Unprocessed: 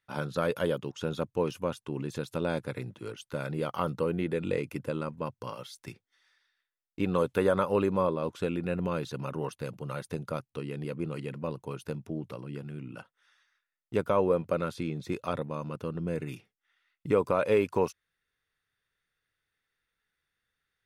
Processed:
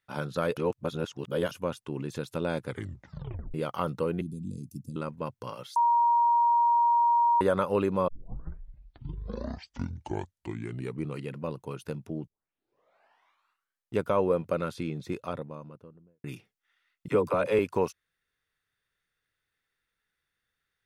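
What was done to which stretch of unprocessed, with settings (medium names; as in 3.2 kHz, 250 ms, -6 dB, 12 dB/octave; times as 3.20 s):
0.57–1.51 s: reverse
2.67 s: tape stop 0.87 s
4.21–4.96 s: Chebyshev band-stop 230–5800 Hz, order 3
5.76–7.41 s: bleep 944 Hz -19.5 dBFS
8.08 s: tape start 3.17 s
12.27 s: tape start 1.68 s
14.88–16.24 s: studio fade out
17.08–17.59 s: phase dispersion lows, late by 45 ms, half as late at 330 Hz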